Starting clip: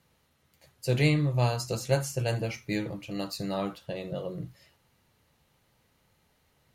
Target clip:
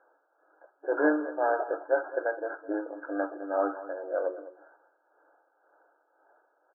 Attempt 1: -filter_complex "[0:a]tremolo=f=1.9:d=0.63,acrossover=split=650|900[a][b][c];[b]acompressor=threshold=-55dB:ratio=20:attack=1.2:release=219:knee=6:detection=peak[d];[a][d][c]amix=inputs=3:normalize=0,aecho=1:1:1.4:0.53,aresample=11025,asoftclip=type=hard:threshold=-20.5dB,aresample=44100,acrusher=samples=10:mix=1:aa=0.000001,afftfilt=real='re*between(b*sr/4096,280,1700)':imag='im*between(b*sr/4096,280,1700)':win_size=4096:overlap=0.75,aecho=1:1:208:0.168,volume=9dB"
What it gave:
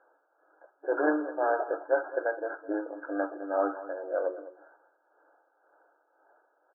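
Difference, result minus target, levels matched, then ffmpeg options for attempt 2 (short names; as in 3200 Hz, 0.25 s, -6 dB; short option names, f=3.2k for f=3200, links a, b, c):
hard clip: distortion +18 dB
-filter_complex "[0:a]tremolo=f=1.9:d=0.63,acrossover=split=650|900[a][b][c];[b]acompressor=threshold=-55dB:ratio=20:attack=1.2:release=219:knee=6:detection=peak[d];[a][d][c]amix=inputs=3:normalize=0,aecho=1:1:1.4:0.53,aresample=11025,asoftclip=type=hard:threshold=-13.5dB,aresample=44100,acrusher=samples=10:mix=1:aa=0.000001,afftfilt=real='re*between(b*sr/4096,280,1700)':imag='im*between(b*sr/4096,280,1700)':win_size=4096:overlap=0.75,aecho=1:1:208:0.168,volume=9dB"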